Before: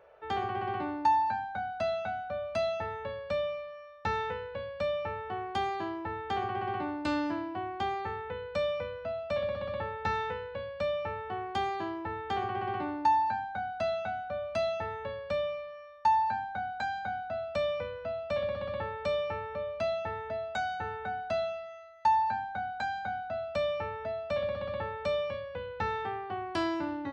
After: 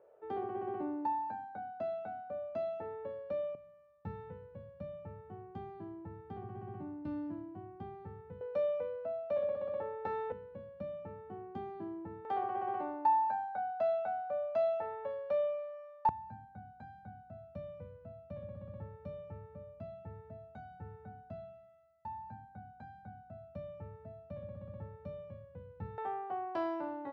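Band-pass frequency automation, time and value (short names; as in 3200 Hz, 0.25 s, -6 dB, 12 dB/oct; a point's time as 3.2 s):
band-pass, Q 1.4
360 Hz
from 3.55 s 150 Hz
from 8.41 s 470 Hz
from 10.32 s 210 Hz
from 12.25 s 620 Hz
from 16.09 s 130 Hz
from 25.98 s 650 Hz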